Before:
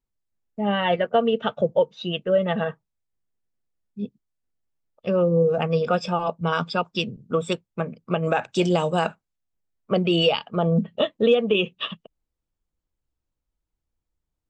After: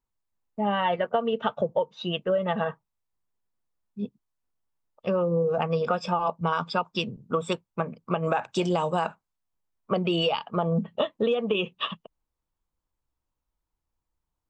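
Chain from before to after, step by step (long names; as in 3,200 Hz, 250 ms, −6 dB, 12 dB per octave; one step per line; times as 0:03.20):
parametric band 990 Hz +9 dB 0.79 octaves
downward compressor, threshold −19 dBFS, peak gain reduction 8 dB
level −2 dB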